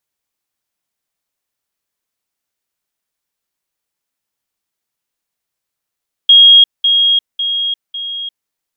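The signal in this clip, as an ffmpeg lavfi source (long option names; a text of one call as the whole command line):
ffmpeg -f lavfi -i "aevalsrc='pow(10,(-2-6*floor(t/0.55))/20)*sin(2*PI*3270*t)*clip(min(mod(t,0.55),0.35-mod(t,0.55))/0.005,0,1)':duration=2.2:sample_rate=44100" out.wav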